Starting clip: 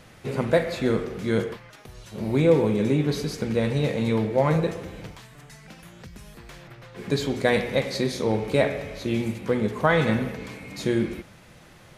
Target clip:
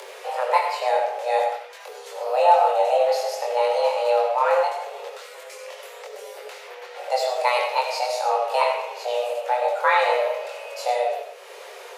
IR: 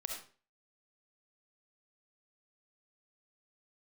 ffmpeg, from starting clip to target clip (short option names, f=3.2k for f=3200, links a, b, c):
-filter_complex "[0:a]acompressor=mode=upward:threshold=-32dB:ratio=2.5,afreqshift=370,asplit=2[a][b];[1:a]atrim=start_sample=2205,adelay=23[c];[b][c]afir=irnorm=-1:irlink=0,volume=0dB[d];[a][d]amix=inputs=2:normalize=0,volume=-1.5dB"